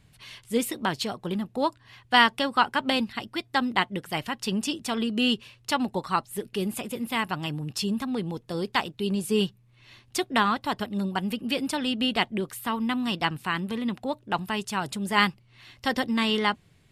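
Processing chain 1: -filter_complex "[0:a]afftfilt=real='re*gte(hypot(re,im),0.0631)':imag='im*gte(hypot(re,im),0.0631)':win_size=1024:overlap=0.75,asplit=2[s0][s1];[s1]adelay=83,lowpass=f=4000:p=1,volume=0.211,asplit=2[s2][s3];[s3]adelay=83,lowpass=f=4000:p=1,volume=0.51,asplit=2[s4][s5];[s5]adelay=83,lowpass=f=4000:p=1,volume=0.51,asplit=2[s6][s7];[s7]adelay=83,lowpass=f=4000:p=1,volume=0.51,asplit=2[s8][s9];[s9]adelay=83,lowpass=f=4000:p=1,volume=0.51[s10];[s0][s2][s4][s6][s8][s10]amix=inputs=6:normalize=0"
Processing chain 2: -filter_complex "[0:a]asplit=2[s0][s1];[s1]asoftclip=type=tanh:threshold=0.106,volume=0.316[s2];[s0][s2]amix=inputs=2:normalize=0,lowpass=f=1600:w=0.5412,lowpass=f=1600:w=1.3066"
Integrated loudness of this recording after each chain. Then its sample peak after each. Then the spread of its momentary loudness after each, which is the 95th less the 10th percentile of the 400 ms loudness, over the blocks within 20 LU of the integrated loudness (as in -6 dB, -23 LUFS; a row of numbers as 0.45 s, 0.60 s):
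-27.5 LUFS, -27.5 LUFS; -4.5 dBFS, -8.0 dBFS; 9 LU, 7 LU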